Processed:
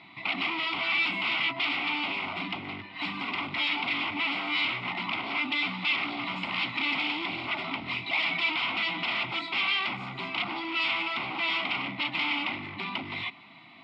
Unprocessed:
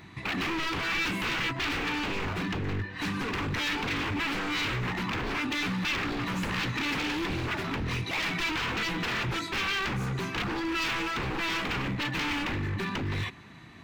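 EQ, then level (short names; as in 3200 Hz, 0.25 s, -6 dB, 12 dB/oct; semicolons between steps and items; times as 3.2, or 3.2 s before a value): speaker cabinet 260–5900 Hz, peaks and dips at 270 Hz +4 dB, 440 Hz +8 dB, 680 Hz +7 dB, 2100 Hz +10 dB, 3200 Hz +4 dB, 5400 Hz +9 dB; fixed phaser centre 1700 Hz, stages 6; 0.0 dB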